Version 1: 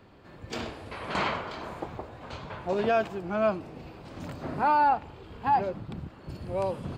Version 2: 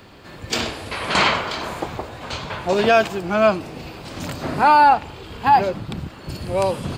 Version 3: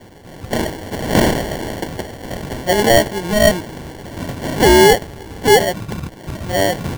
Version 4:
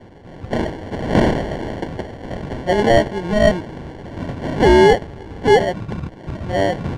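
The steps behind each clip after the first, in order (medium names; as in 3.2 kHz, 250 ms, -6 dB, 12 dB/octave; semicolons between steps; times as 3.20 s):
treble shelf 2.4 kHz +11.5 dB; trim +8.5 dB
sample-and-hold 35×; trim +3.5 dB
tape spacing loss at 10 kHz 21 dB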